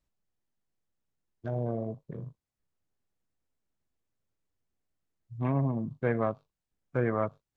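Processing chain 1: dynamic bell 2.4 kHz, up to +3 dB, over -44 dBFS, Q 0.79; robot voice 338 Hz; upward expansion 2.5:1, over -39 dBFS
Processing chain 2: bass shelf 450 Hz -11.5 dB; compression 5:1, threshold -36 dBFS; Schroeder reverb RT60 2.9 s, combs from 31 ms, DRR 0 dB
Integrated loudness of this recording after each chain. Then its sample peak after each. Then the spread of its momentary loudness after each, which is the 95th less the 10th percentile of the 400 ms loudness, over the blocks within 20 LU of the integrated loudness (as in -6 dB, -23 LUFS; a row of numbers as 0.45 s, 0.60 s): -38.0 LUFS, -42.0 LUFS; -18.0 dBFS, -24.0 dBFS; 15 LU, 17 LU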